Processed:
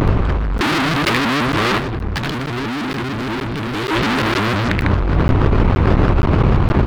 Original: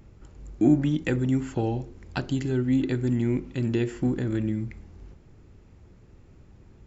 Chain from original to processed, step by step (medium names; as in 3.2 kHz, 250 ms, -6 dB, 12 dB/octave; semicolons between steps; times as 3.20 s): local Wiener filter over 25 samples; hum notches 60/120/180/240/300 Hz; feedback delay 75 ms, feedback 33%, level -5.5 dB; fuzz box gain 48 dB, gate -56 dBFS; 1.79–3.91 s: bass shelf 480 Hz +6 dB; compressor with a negative ratio -21 dBFS, ratio -1; high-order bell 2.2 kHz +9.5 dB 2.5 oct; crackling interface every 0.47 s, samples 512, zero, from 0.58 s; vibrato with a chosen wave saw up 6.4 Hz, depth 250 cents; trim +3 dB